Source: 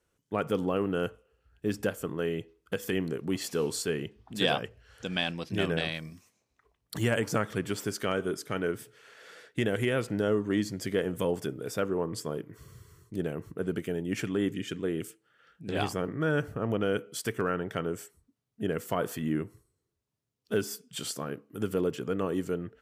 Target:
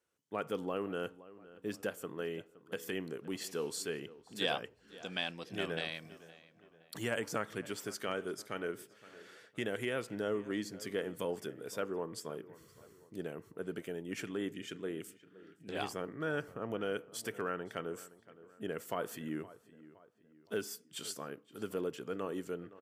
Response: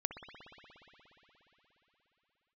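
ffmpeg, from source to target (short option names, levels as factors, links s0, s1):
-filter_complex "[0:a]highpass=f=310:p=1,asplit=2[s0][s1];[s1]adelay=517,lowpass=f=2700:p=1,volume=0.126,asplit=2[s2][s3];[s3]adelay=517,lowpass=f=2700:p=1,volume=0.45,asplit=2[s4][s5];[s5]adelay=517,lowpass=f=2700:p=1,volume=0.45,asplit=2[s6][s7];[s7]adelay=517,lowpass=f=2700:p=1,volume=0.45[s8];[s2][s4][s6][s8]amix=inputs=4:normalize=0[s9];[s0][s9]amix=inputs=2:normalize=0,volume=0.501"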